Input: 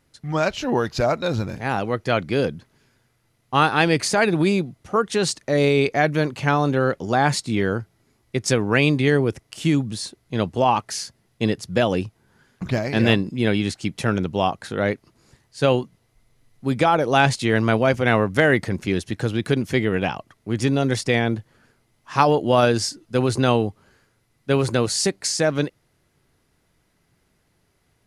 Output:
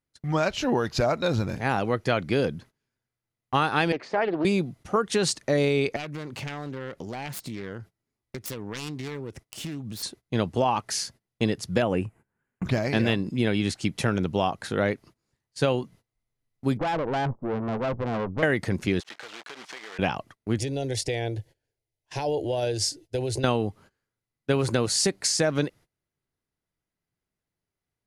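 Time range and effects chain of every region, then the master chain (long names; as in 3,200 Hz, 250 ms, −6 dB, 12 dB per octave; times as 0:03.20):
0:03.92–0:04.45: high-pass filter 350 Hz + head-to-tape spacing loss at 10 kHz 44 dB + highs frequency-modulated by the lows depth 0.21 ms
0:05.96–0:10.03: phase distortion by the signal itself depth 0.36 ms + downward compressor, threshold −32 dBFS
0:11.82–0:12.65: low-pass filter 9,700 Hz + flat-topped bell 4,500 Hz −15.5 dB 1.1 octaves
0:16.77–0:18.43: Butterworth low-pass 1,100 Hz 48 dB per octave + tube saturation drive 24 dB, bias 0.75
0:19.00–0:19.99: one scale factor per block 3 bits + band-pass filter 760–5,000 Hz + downward compressor 16 to 1, threshold −36 dBFS
0:20.58–0:23.44: parametric band 85 Hz +4.5 dB 2.5 octaves + downward compressor 10 to 1, threshold −19 dBFS + phaser with its sweep stopped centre 500 Hz, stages 4
whole clip: noise gate −45 dBFS, range −22 dB; downward compressor, threshold −19 dBFS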